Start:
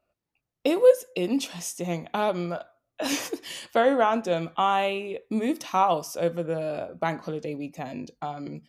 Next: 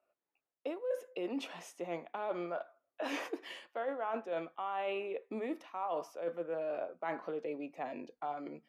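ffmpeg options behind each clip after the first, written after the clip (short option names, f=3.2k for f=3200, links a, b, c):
-filter_complex "[0:a]acrossover=split=300 2700:gain=0.0708 1 0.112[a][b][c];[a][b][c]amix=inputs=3:normalize=0,areverse,acompressor=threshold=-31dB:ratio=12,areverse,volume=-2.5dB"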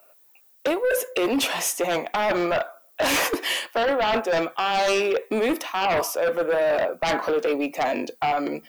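-af "aemphasis=mode=production:type=bsi,aeval=exprs='0.0562*sin(PI/2*3.16*val(0)/0.0562)':c=same,volume=7dB"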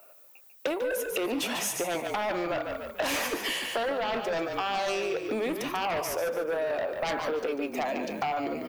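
-filter_complex "[0:a]asplit=5[a][b][c][d][e];[b]adelay=145,afreqshift=-38,volume=-8.5dB[f];[c]adelay=290,afreqshift=-76,volume=-17.6dB[g];[d]adelay=435,afreqshift=-114,volume=-26.7dB[h];[e]adelay=580,afreqshift=-152,volume=-35.9dB[i];[a][f][g][h][i]amix=inputs=5:normalize=0,acompressor=threshold=-29dB:ratio=6,volume=1dB"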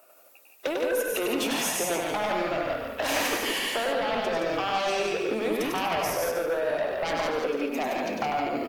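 -filter_complex "[0:a]asplit=2[a][b];[b]aecho=0:1:99.13|169.1:0.631|0.631[c];[a][c]amix=inputs=2:normalize=0" -ar 48000 -c:a aac -b:a 64k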